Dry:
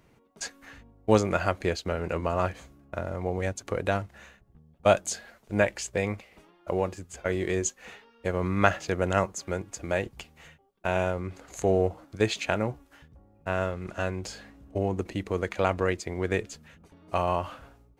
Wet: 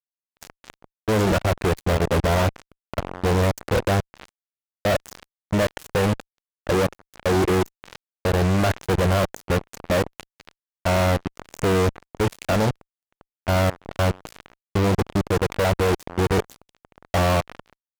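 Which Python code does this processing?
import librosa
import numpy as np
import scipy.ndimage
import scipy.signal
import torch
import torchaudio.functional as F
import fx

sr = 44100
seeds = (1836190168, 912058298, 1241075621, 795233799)

y = fx.tilt_shelf(x, sr, db=9.0, hz=1200.0)
y = fx.notch(y, sr, hz=1300.0, q=21.0)
y = fx.level_steps(y, sr, step_db=24)
y = fx.fuzz(y, sr, gain_db=44.0, gate_db=-41.0)
y = F.gain(torch.from_numpy(y), -4.0).numpy()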